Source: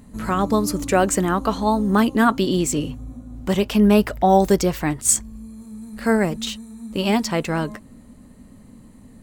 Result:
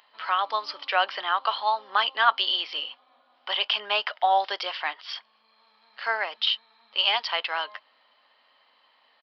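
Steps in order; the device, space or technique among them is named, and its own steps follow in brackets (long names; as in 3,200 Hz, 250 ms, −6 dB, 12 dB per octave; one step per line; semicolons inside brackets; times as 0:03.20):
musical greeting card (downsampling to 11,025 Hz; high-pass filter 790 Hz 24 dB per octave; parametric band 3,100 Hz +12 dB 0.24 octaves)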